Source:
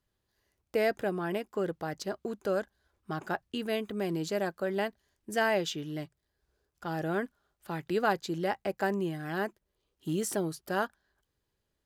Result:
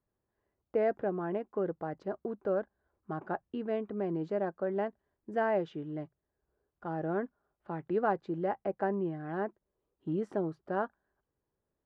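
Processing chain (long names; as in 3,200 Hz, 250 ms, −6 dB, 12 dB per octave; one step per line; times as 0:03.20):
low-pass filter 1,100 Hz 12 dB per octave
low-shelf EQ 110 Hz −8.5 dB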